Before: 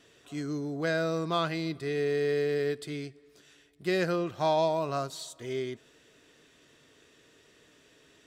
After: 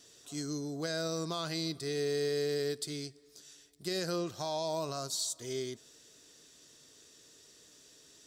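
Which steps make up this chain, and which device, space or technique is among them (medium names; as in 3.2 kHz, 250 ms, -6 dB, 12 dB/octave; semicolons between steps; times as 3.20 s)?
over-bright horn tweeter (resonant high shelf 3.6 kHz +11.5 dB, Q 1.5; peak limiter -20.5 dBFS, peak gain reduction 8 dB); trim -4 dB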